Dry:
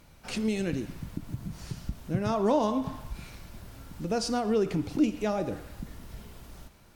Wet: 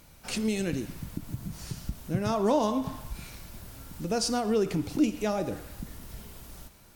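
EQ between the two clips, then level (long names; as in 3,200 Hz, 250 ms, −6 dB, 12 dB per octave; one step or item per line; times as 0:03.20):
high-shelf EQ 6,200 Hz +9.5 dB
0.0 dB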